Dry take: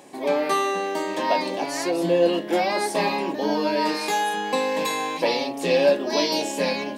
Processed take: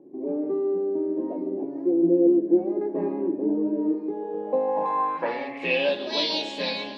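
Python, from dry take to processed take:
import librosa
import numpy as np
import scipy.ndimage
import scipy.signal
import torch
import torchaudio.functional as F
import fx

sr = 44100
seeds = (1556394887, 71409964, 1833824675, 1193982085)

y = fx.peak_eq(x, sr, hz=1700.0, db=13.0, octaves=1.7, at=(2.81, 3.28))
y = fx.echo_alternate(y, sr, ms=147, hz=1500.0, feedback_pct=72, wet_db=-13.5)
y = fx.filter_sweep_lowpass(y, sr, from_hz=350.0, to_hz=3700.0, start_s=4.12, end_s=5.99, q=4.6)
y = y * 10.0 ** (-7.0 / 20.0)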